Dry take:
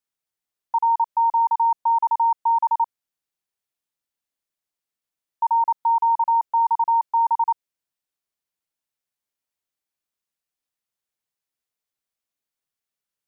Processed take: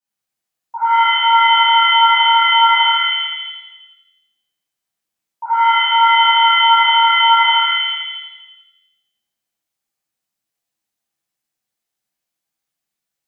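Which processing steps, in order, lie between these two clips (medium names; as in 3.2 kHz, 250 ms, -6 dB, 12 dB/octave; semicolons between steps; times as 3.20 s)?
pitch-shifted reverb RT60 1 s, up +7 st, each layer -2 dB, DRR -11.5 dB; trim -7.5 dB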